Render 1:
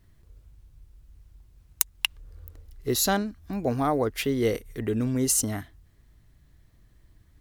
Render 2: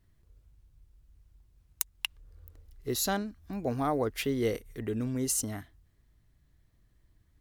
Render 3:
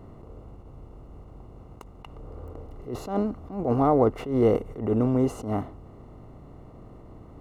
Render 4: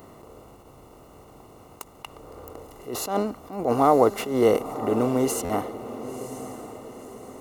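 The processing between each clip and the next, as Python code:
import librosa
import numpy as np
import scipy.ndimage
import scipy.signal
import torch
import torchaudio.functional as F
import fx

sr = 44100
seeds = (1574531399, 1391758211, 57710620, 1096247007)

y1 = fx.rider(x, sr, range_db=10, speed_s=2.0)
y1 = y1 * librosa.db_to_amplitude(-5.0)
y2 = fx.bin_compress(y1, sr, power=0.6)
y2 = scipy.signal.savgol_filter(y2, 65, 4, mode='constant')
y2 = fx.attack_slew(y2, sr, db_per_s=120.0)
y2 = y2 * librosa.db_to_amplitude(7.5)
y3 = fx.riaa(y2, sr, side='recording')
y3 = fx.echo_diffused(y3, sr, ms=997, feedback_pct=43, wet_db=-12.5)
y3 = fx.buffer_glitch(y3, sr, at_s=(5.44,), block=512, repeats=4)
y3 = y3 * librosa.db_to_amplitude(5.5)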